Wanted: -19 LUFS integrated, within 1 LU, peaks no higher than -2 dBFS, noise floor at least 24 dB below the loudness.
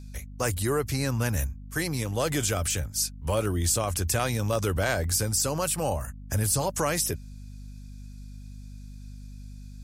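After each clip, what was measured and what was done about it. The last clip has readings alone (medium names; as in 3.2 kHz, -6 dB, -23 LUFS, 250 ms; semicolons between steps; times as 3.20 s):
hum 50 Hz; highest harmonic 250 Hz; hum level -40 dBFS; loudness -27.0 LUFS; peak level -11.5 dBFS; loudness target -19.0 LUFS
-> de-hum 50 Hz, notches 5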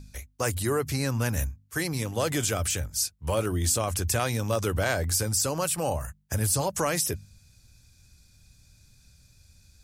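hum not found; loudness -27.5 LUFS; peak level -12.0 dBFS; loudness target -19.0 LUFS
-> trim +8.5 dB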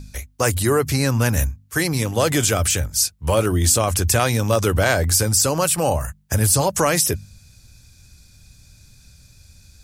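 loudness -19.0 LUFS; peak level -3.5 dBFS; noise floor -52 dBFS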